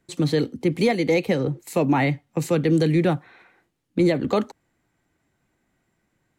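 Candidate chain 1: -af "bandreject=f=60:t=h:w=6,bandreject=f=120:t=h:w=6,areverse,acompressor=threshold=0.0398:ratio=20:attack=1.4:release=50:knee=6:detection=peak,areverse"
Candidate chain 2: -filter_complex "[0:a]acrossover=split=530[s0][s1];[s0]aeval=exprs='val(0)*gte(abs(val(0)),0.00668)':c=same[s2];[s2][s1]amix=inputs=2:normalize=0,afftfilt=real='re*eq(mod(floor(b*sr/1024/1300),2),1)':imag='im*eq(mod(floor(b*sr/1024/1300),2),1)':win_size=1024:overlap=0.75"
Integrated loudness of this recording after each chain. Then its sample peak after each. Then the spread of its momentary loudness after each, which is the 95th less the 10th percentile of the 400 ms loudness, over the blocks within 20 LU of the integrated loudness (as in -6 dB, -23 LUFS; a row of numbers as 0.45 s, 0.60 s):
-34.0 LUFS, -34.0 LUFS; -22.5 dBFS, -17.0 dBFS; 8 LU, 12 LU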